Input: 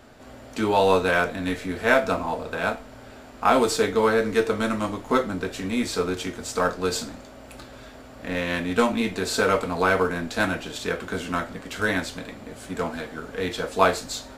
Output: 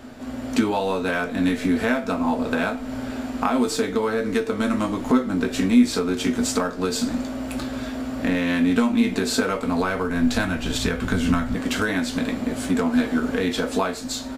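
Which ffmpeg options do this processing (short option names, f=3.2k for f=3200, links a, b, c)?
-filter_complex "[0:a]asplit=2[a][b];[b]adelay=16,volume=-11.5dB[c];[a][c]amix=inputs=2:normalize=0,acompressor=threshold=-31dB:ratio=6,equalizer=f=250:t=o:w=0.31:g=12,dynaudnorm=f=120:g=7:m=4dB,asettb=1/sr,asplit=3[d][e][f];[d]atrim=end=9.484[g];[e]atrim=start=9.48:end=11.55,asetpts=PTS-STARTPTS,afade=t=in:d=0.004:c=qsin,afade=t=out:st=2.066:d=0.004:c=qsin,asubboost=boost=9.5:cutoff=130[h];[f]atrim=start=11.546[i];[g][h]acrossfade=d=0.004:c1=hsin:c2=qsin[j];[j][i]acrossfade=d=0.004:c1=qsin:c2=hsin,volume=5dB"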